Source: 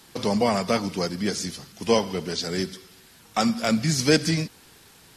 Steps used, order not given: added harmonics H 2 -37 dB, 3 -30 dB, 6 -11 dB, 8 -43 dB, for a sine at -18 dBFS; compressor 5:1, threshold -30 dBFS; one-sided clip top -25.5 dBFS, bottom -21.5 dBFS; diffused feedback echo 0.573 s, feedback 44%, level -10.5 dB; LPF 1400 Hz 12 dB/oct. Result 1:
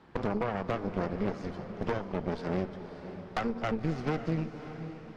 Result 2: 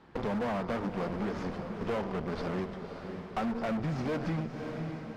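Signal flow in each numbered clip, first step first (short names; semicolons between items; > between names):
compressor > LPF > one-sided clip > added harmonics > diffused feedback echo; added harmonics > LPF > one-sided clip > diffused feedback echo > compressor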